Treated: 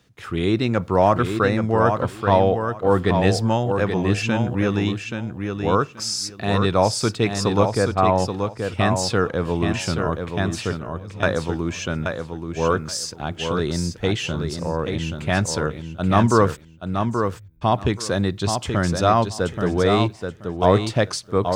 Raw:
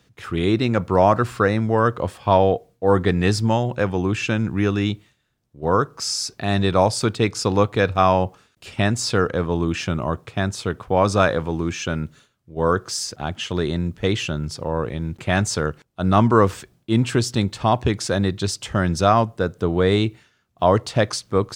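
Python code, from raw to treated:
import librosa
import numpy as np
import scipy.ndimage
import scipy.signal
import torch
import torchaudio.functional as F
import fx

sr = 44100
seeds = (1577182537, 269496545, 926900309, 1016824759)

y = fx.env_lowpass_down(x, sr, base_hz=1400.0, full_db=-15.5, at=(7.71, 8.18), fade=0.02)
y = fx.tone_stack(y, sr, knobs='10-0-1', at=(10.79, 11.23))
y = fx.cheby2_bandstop(y, sr, low_hz=350.0, high_hz=6600.0, order=4, stop_db=80, at=(16.55, 17.61), fade=0.02)
y = fx.echo_feedback(y, sr, ms=829, feedback_pct=18, wet_db=-6)
y = y * librosa.db_to_amplitude(-1.0)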